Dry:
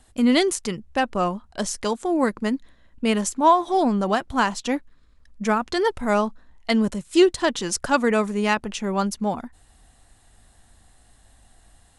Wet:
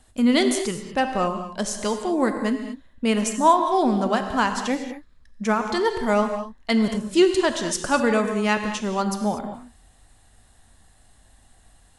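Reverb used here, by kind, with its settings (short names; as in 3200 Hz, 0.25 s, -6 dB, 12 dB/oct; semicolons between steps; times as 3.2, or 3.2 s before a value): non-linear reverb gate 0.26 s flat, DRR 6 dB; gain -1 dB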